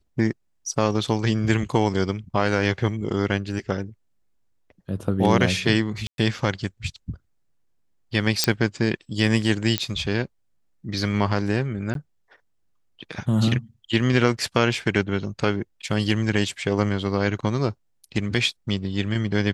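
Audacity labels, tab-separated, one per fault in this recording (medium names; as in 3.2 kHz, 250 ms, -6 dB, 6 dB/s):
6.070000	6.180000	dropout 112 ms
8.440000	8.440000	pop -2 dBFS
9.780000	9.780000	pop -5 dBFS
11.940000	11.950000	dropout 12 ms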